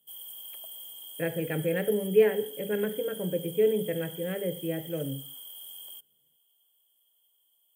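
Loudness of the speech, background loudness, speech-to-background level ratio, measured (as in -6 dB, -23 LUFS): -29.0 LUFS, -41.5 LUFS, 12.5 dB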